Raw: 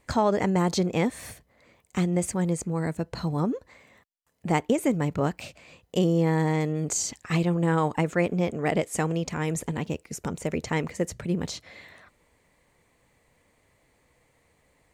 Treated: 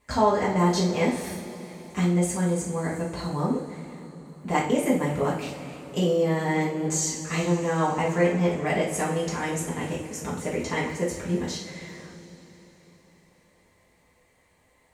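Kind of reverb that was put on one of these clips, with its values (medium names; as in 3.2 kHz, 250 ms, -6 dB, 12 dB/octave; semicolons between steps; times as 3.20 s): two-slope reverb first 0.44 s, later 4.2 s, from -18 dB, DRR -7.5 dB; trim -6 dB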